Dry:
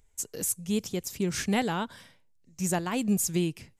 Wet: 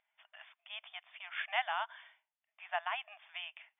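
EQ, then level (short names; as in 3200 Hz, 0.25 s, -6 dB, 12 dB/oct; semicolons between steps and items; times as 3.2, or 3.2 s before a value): brick-wall FIR band-pass 610–3600 Hz; air absorption 140 m; bell 2300 Hz +6 dB 2.3 oct; -5.0 dB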